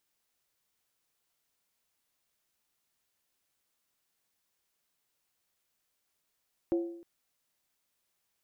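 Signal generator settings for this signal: skin hit length 0.31 s, lowest mode 340 Hz, decay 0.70 s, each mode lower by 10.5 dB, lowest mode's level -23.5 dB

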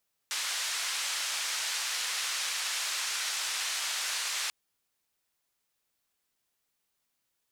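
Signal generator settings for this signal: noise band 1.2–6.9 kHz, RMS -33 dBFS 4.19 s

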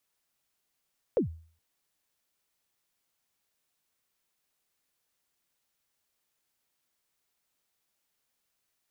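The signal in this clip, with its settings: kick drum length 0.42 s, from 560 Hz, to 81 Hz, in 112 ms, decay 0.45 s, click off, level -19 dB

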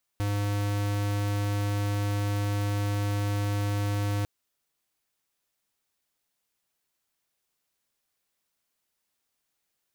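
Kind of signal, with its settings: tone square 102 Hz -27.5 dBFS 4.05 s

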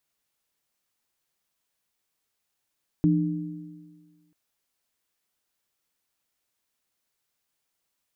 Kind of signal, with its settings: sine partials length 1.29 s, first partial 168 Hz, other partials 302 Hz, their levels 0 dB, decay 1.56 s, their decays 1.61 s, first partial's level -18.5 dB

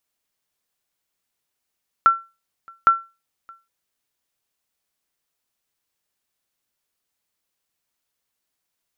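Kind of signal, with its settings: sonar ping 1.35 kHz, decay 0.27 s, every 0.81 s, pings 2, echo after 0.62 s, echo -29.5 dB -5.5 dBFS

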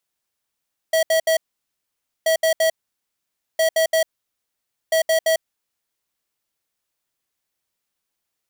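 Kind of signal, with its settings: beep pattern square 646 Hz, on 0.10 s, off 0.07 s, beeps 3, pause 0.89 s, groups 4, -17 dBFS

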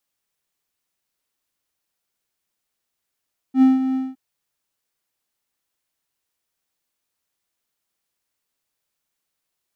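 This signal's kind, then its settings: ADSR triangle 262 Hz, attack 79 ms, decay 169 ms, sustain -10 dB, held 0.41 s, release 204 ms -6.5 dBFS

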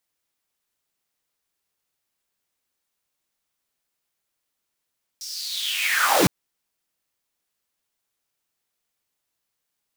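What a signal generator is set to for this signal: swept filtered noise pink, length 1.06 s highpass, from 5.6 kHz, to 110 Hz, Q 6.3, linear, gain ramp +18.5 dB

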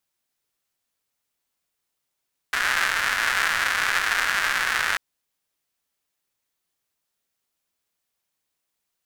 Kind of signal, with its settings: rain from filtered ticks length 2.44 s, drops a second 270, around 1.6 kHz, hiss -21.5 dB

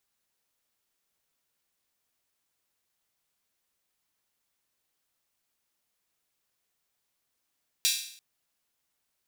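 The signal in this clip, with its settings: open hi-hat length 0.34 s, high-pass 3.4 kHz, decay 0.61 s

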